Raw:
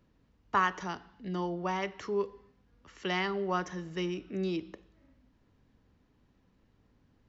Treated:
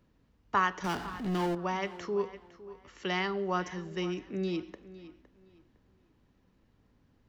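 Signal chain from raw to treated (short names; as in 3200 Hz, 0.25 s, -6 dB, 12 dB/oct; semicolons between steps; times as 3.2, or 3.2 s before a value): 0.84–1.55 power-law curve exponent 0.5; tape echo 0.509 s, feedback 27%, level -15.5 dB, low-pass 5200 Hz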